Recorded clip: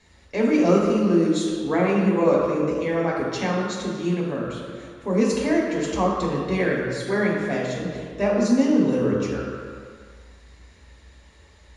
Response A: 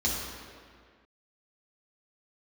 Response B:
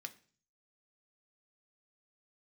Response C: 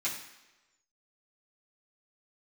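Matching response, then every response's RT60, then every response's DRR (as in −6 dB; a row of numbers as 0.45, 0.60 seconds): A; 1.9, 0.45, 1.1 seconds; −5.5, 6.0, −9.5 decibels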